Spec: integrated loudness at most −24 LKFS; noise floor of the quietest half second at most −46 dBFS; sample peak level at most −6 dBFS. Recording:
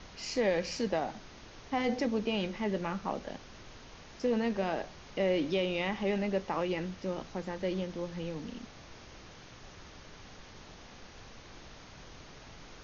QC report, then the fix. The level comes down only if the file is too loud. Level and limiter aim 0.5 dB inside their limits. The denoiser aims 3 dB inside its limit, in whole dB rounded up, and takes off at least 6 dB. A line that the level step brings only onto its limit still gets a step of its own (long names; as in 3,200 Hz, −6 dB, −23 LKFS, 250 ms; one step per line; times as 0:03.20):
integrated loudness −33.5 LKFS: in spec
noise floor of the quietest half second −51 dBFS: in spec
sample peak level −18.5 dBFS: in spec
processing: no processing needed